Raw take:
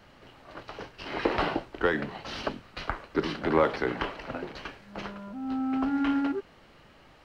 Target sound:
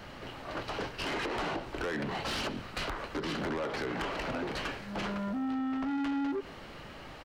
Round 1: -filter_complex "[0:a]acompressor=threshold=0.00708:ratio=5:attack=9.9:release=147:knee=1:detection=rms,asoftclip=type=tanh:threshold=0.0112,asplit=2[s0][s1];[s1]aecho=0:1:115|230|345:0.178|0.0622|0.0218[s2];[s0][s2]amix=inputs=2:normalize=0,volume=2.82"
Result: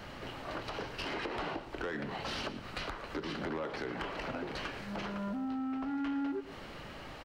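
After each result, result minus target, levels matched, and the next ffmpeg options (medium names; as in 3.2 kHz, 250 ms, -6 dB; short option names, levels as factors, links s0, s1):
compression: peak gain reduction +7 dB; echo-to-direct +8.5 dB
-filter_complex "[0:a]acompressor=threshold=0.0188:ratio=5:attack=9.9:release=147:knee=1:detection=rms,asoftclip=type=tanh:threshold=0.0112,asplit=2[s0][s1];[s1]aecho=0:1:115|230|345:0.178|0.0622|0.0218[s2];[s0][s2]amix=inputs=2:normalize=0,volume=2.82"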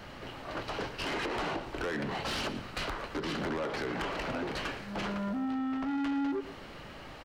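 echo-to-direct +8.5 dB
-filter_complex "[0:a]acompressor=threshold=0.0188:ratio=5:attack=9.9:release=147:knee=1:detection=rms,asoftclip=type=tanh:threshold=0.0112,asplit=2[s0][s1];[s1]aecho=0:1:115|230:0.0668|0.0234[s2];[s0][s2]amix=inputs=2:normalize=0,volume=2.82"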